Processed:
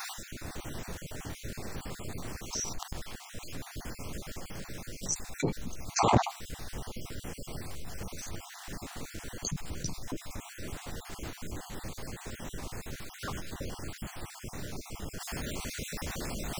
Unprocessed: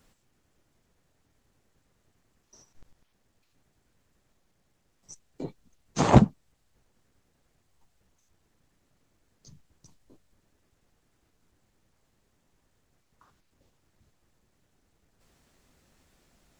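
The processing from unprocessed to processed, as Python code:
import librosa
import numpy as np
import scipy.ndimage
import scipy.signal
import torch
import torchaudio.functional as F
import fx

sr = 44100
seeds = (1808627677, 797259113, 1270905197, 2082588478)

y = fx.spec_dropout(x, sr, seeds[0], share_pct=37)
y = fx.env_flatten(y, sr, amount_pct=70)
y = y * 10.0 ** (-8.0 / 20.0)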